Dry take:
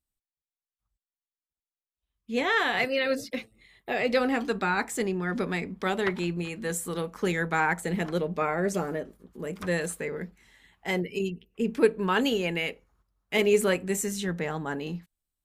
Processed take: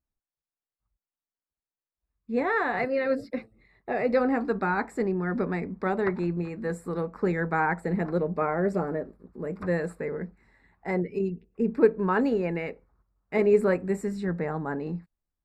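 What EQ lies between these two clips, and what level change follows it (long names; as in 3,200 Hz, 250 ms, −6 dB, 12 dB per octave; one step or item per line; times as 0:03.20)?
moving average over 14 samples
+2.0 dB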